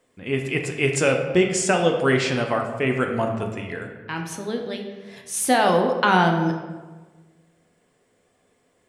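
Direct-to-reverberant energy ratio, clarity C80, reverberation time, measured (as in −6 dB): 2.5 dB, 7.5 dB, 1.3 s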